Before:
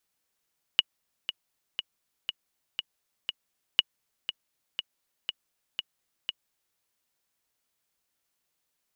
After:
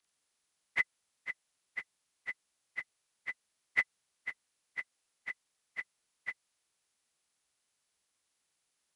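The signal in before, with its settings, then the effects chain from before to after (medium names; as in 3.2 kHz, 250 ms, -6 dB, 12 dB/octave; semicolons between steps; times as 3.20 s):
metronome 120 bpm, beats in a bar 6, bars 2, 2.91 kHz, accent 11 dB -6 dBFS
frequency axis rescaled in octaves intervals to 85%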